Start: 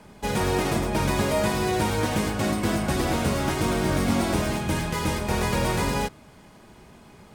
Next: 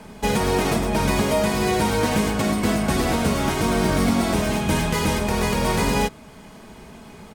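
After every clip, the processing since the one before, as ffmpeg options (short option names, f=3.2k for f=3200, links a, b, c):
-af "aecho=1:1:4.5:0.33,alimiter=limit=-16.5dB:level=0:latency=1:release=461,volume=6.5dB"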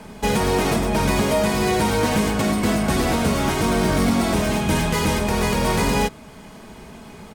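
-af "asoftclip=type=tanh:threshold=-11.5dB,volume=2dB"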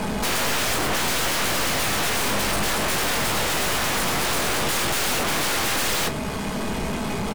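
-filter_complex "[0:a]aeval=exprs='0.282*sin(PI/2*5.01*val(0)/0.282)':c=same,aeval=exprs='(tanh(14.1*val(0)+0.45)-tanh(0.45))/14.1':c=same,asplit=2[a][b];[b]adelay=20,volume=-11dB[c];[a][c]amix=inputs=2:normalize=0"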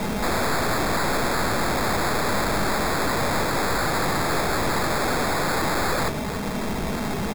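-af "acrusher=samples=15:mix=1:aa=0.000001"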